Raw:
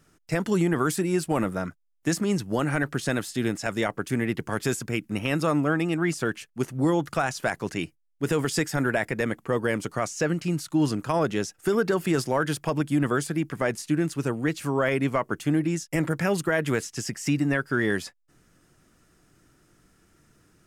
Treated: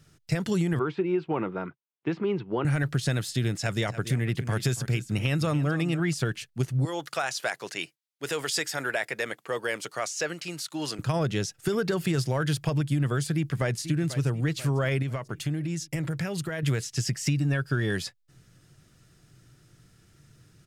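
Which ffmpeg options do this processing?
ffmpeg -i in.wav -filter_complex "[0:a]asettb=1/sr,asplit=3[link_01][link_02][link_03];[link_01]atrim=end=0.794[link_04];[link_02]atrim=start=0.79:end=2.65,asetpts=PTS-STARTPTS,afade=type=in:duration=0.004:curve=qsin,afade=type=out:start_time=1.856:duration=0.004:curve=qsin,highpass=270,equalizer=frequency=380:width_type=q:width=4:gain=7,equalizer=frequency=610:width_type=q:width=4:gain=-6,equalizer=frequency=950:width_type=q:width=4:gain=6,equalizer=frequency=1800:width_type=q:width=4:gain=-8,lowpass=frequency=2600:width=0.5412,lowpass=frequency=2600:width=1.3066[link_05];[link_03]atrim=start=2.646[link_06];[link_04][link_05]acrossfade=duration=0.004:curve1=hsin:curve2=qsin[link_07];[link_07][link_06]acrossfade=duration=0.004:curve1=qsin:curve2=hsin,asettb=1/sr,asplit=3[link_08][link_09][link_10];[link_08]atrim=end=3.594[link_11];[link_09]atrim=start=3.59:end=6,asetpts=PTS-STARTPTS,afade=type=in:duration=0.004:curve=qsin,afade=type=out:start_time=2.406:duration=0.004:curve=qsin,aecho=1:1:284:0.188,atrim=end_sample=106281[link_12];[link_10]atrim=start=5.996[link_13];[link_11][link_12]acrossfade=duration=0.004:curve1=hsin:curve2=qsin[link_14];[link_14][link_13]acrossfade=duration=0.004:curve1=qsin:curve2=hsin,asettb=1/sr,asplit=3[link_15][link_16][link_17];[link_15]atrim=end=6.854[link_18];[link_16]atrim=start=6.85:end=10.99,asetpts=PTS-STARTPTS,afade=type=in:duration=0.004:curve=qsin,afade=type=out:start_time=4.136:duration=0.004:curve=qsin,highpass=500[link_19];[link_17]atrim=start=10.986[link_20];[link_18][link_19]acrossfade=duration=0.004:curve1=hsin:curve2=qsin[link_21];[link_21][link_20]acrossfade=duration=0.004:curve1=qsin:curve2=hsin,asplit=2[link_22][link_23];[link_23]afade=type=in:start_time=13.35:duration=0.01,afade=type=out:start_time=13.8:duration=0.01,aecho=0:1:490|980|1470|1960|2450|2940:0.199526|0.109739|0.0603567|0.0331962|0.0182579|0.0100418[link_24];[link_22][link_24]amix=inputs=2:normalize=0,asettb=1/sr,asplit=3[link_25][link_26][link_27];[link_25]atrim=end=15.024[link_28];[link_26]atrim=start=15.02:end=16.63,asetpts=PTS-STARTPTS,afade=type=in:duration=0.004:curve=qsin,afade=type=out:start_time=1.606:duration=0.004:curve=qsin,acompressor=threshold=-32dB:ratio=2.5:attack=3.2:release=140:knee=1:detection=peak[link_29];[link_27]atrim=start=16.626[link_30];[link_28][link_29]acrossfade=duration=0.004:curve1=hsin:curve2=qsin[link_31];[link_31][link_30]acrossfade=duration=0.004:curve1=qsin:curve2=hsin,asettb=1/sr,asplit=3[link_32][link_33][link_34];[link_32]atrim=end=17.374[link_35];[link_33]atrim=start=17.37:end=17.95,asetpts=PTS-STARTPTS,afade=type=in:duration=0.004:curve=qsin,afade=type=out:start_time=0.576:duration=0.004:curve=qsin,asuperstop=centerf=2000:order=4:qfactor=7.9[link_36];[link_34]atrim=start=17.946[link_37];[link_35][link_36]acrossfade=duration=0.004:curve1=hsin:curve2=qsin[link_38];[link_38][link_37]acrossfade=duration=0.004:curve1=qsin:curve2=hsin,equalizer=frequency=125:width_type=o:width=1:gain=12,equalizer=frequency=250:width_type=o:width=1:gain=-5,equalizer=frequency=1000:width_type=o:width=1:gain=-4,equalizer=frequency=4000:width_type=o:width=1:gain=6,acompressor=threshold=-22dB:ratio=6" out.wav

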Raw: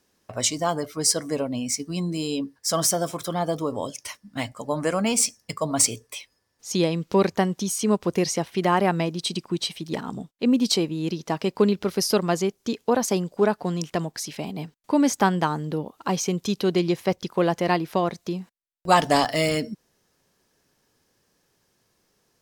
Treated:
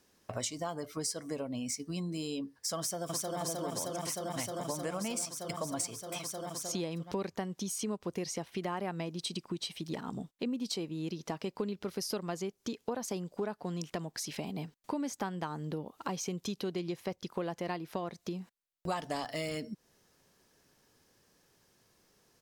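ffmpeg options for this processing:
ffmpeg -i in.wav -filter_complex "[0:a]asplit=2[link_01][link_02];[link_02]afade=type=in:start_time=2.78:duration=0.01,afade=type=out:start_time=3.39:duration=0.01,aecho=0:1:310|620|930|1240|1550|1860|2170|2480|2790|3100|3410|3720:0.944061|0.802452|0.682084|0.579771|0.492806|0.418885|0.356052|0.302644|0.257248|0.21866|0.185861|0.157982[link_03];[link_01][link_03]amix=inputs=2:normalize=0,acompressor=threshold=-36dB:ratio=4" out.wav

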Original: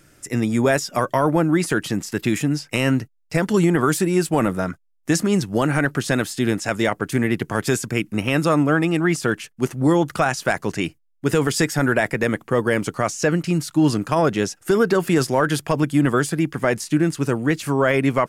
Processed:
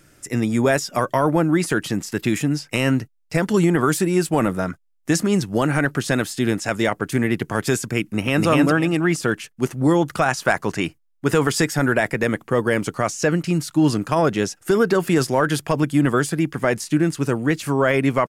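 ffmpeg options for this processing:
ffmpeg -i in.wav -filter_complex "[0:a]asplit=2[link_01][link_02];[link_02]afade=type=in:start_time=8.01:duration=0.01,afade=type=out:start_time=8.46:duration=0.01,aecho=0:1:250|500|750:0.841395|0.168279|0.0336558[link_03];[link_01][link_03]amix=inputs=2:normalize=0,asettb=1/sr,asplit=3[link_04][link_05][link_06];[link_04]atrim=end=10.284[link_07];[link_05]atrim=start=10.28:end=11.61,asetpts=PTS-STARTPTS,afade=type=in:duration=0.004:curve=qsin,afade=type=out:start_time=1.326:duration=0.004:curve=qsin,equalizer=frequency=1100:width_type=o:width=1.3:gain=4.5[link_08];[link_06]atrim=start=11.606[link_09];[link_07][link_08]acrossfade=duration=0.004:curve1=hsin:curve2=qsin[link_10];[link_10][link_09]acrossfade=duration=0.004:curve1=qsin:curve2=hsin" out.wav

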